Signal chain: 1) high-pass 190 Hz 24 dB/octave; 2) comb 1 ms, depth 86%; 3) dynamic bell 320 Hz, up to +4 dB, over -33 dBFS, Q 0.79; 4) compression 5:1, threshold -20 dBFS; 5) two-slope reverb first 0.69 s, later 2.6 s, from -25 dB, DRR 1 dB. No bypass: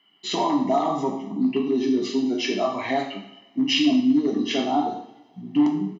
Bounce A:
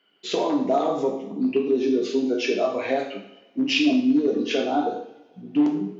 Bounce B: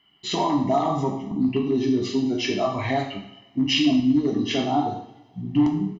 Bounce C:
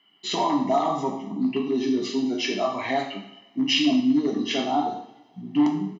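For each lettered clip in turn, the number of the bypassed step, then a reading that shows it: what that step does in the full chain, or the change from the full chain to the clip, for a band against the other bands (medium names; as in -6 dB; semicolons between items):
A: 2, 500 Hz band +6.0 dB; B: 1, 125 Hz band +9.5 dB; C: 3, 250 Hz band -2.0 dB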